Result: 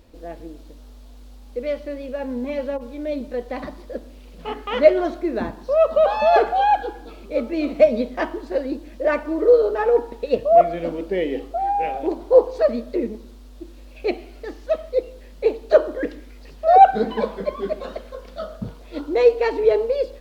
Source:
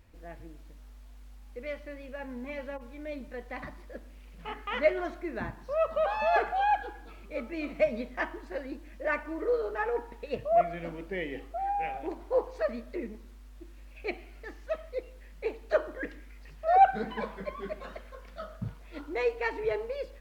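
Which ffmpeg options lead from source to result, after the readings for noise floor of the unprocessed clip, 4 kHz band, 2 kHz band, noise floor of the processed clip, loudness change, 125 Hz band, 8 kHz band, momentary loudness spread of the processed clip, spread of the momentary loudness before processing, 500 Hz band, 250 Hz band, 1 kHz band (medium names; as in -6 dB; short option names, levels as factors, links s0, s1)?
-49 dBFS, +9.5 dB, +3.5 dB, -42 dBFS, +11.5 dB, +5.5 dB, no reading, 18 LU, 20 LU, +13.0 dB, +12.5 dB, +9.5 dB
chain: -af "equalizer=f=125:t=o:w=1:g=-7,equalizer=f=250:t=o:w=1:g=6,equalizer=f=500:t=o:w=1:g=7,equalizer=f=2000:t=o:w=1:g=-6,equalizer=f=4000:t=o:w=1:g=6,volume=2.24"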